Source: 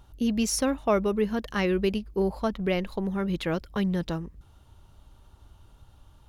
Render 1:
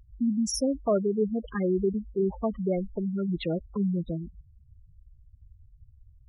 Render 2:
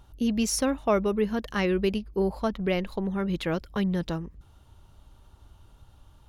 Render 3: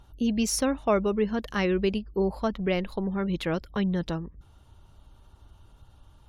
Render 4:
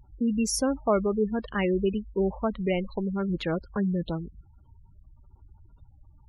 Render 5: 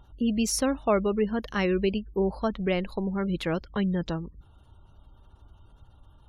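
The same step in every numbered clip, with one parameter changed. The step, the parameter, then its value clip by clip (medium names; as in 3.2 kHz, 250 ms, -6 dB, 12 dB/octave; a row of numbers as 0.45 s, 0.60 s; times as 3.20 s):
spectral gate, under each frame's peak: -10 dB, -60 dB, -45 dB, -20 dB, -35 dB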